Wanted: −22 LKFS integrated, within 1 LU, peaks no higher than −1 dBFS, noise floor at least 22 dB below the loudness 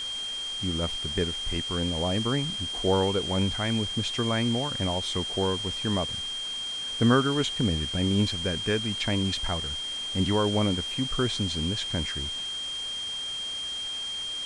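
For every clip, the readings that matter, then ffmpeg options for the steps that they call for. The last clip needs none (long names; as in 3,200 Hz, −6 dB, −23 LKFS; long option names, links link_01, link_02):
interfering tone 3,200 Hz; level of the tone −31 dBFS; background noise floor −34 dBFS; target noise floor −50 dBFS; integrated loudness −27.5 LKFS; sample peak −9.5 dBFS; target loudness −22.0 LKFS
→ -af "bandreject=frequency=3200:width=30"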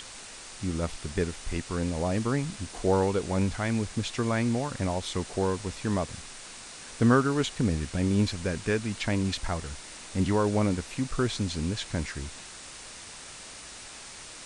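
interfering tone none found; background noise floor −45 dBFS; target noise floor −51 dBFS
→ -af "afftdn=noise_reduction=6:noise_floor=-45"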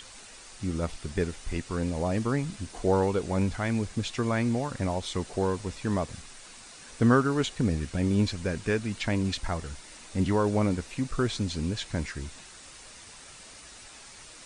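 background noise floor −48 dBFS; target noise floor −51 dBFS
→ -af "afftdn=noise_reduction=6:noise_floor=-48"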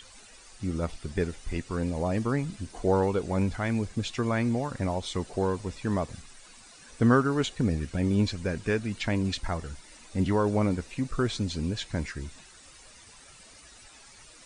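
background noise floor −52 dBFS; integrated loudness −29.0 LKFS; sample peak −9.5 dBFS; target loudness −22.0 LKFS
→ -af "volume=7dB"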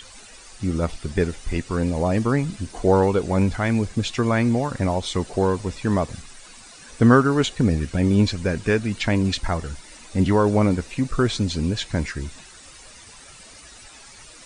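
integrated loudness −22.0 LKFS; sample peak −2.5 dBFS; background noise floor −45 dBFS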